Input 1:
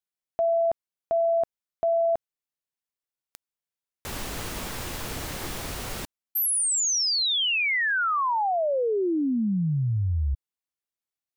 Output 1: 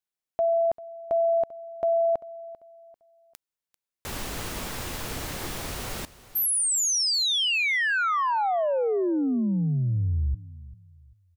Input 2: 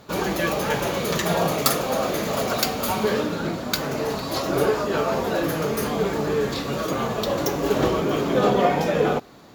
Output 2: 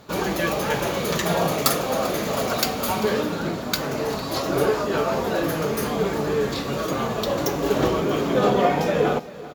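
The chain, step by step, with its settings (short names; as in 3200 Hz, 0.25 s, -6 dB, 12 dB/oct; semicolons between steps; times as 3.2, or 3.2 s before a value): feedback echo 0.393 s, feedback 32%, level -18 dB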